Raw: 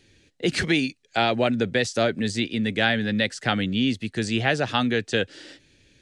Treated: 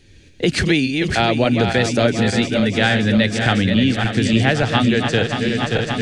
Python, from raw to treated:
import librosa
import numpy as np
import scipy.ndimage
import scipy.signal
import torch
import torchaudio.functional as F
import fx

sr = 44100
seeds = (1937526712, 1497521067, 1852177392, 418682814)

y = fx.reverse_delay_fb(x, sr, ms=289, feedback_pct=75, wet_db=-7)
y = fx.recorder_agc(y, sr, target_db=-13.0, rise_db_per_s=18.0, max_gain_db=30)
y = fx.low_shelf(y, sr, hz=110.0, db=11.5)
y = y * librosa.db_to_amplitude(3.5)